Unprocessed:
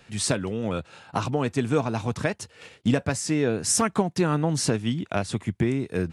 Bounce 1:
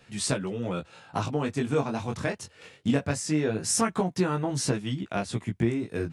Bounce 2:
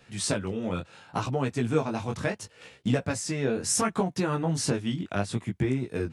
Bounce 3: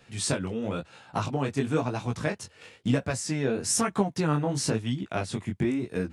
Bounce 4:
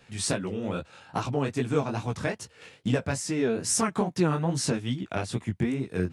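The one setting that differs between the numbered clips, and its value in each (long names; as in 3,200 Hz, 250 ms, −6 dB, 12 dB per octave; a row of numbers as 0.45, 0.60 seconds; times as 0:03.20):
chorus effect, speed: 0.21, 0.71, 1, 2.4 Hertz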